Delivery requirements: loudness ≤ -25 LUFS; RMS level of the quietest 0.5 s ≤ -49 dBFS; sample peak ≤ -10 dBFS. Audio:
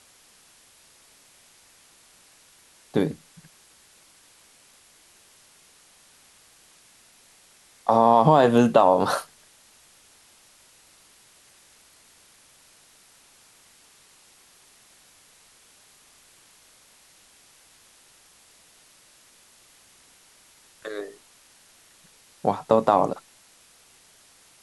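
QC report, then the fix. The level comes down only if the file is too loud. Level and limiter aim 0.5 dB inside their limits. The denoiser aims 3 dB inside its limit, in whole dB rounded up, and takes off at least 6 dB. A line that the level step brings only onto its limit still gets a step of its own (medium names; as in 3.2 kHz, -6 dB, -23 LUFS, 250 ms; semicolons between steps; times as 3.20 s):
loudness -21.0 LUFS: fail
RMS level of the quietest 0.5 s -56 dBFS: pass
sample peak -5.5 dBFS: fail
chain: trim -4.5 dB; peak limiter -10.5 dBFS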